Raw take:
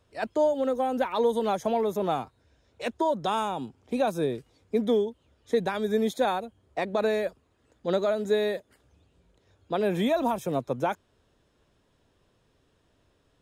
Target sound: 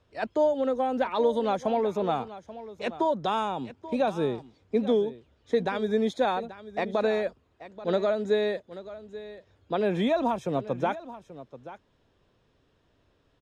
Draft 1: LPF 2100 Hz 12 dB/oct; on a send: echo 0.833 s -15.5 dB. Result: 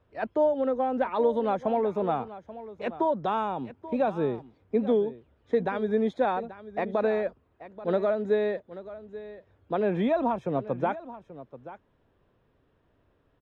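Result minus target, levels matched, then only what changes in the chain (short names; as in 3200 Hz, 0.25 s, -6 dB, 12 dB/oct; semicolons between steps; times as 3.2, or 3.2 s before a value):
4000 Hz band -9.0 dB
change: LPF 5300 Hz 12 dB/oct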